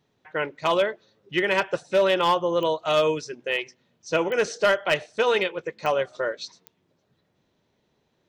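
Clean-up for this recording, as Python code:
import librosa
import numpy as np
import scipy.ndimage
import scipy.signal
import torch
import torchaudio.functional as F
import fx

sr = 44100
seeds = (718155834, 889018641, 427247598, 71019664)

y = fx.fix_declip(x, sr, threshold_db=-13.5)
y = fx.fix_declick_ar(y, sr, threshold=10.0)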